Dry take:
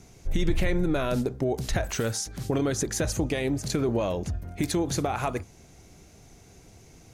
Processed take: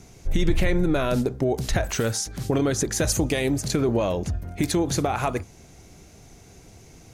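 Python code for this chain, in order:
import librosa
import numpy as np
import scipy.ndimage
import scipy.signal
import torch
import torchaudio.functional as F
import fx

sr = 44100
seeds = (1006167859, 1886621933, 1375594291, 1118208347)

y = fx.high_shelf(x, sr, hz=5100.0, db=8.0, at=(3.0, 3.61))
y = y * librosa.db_to_amplitude(3.5)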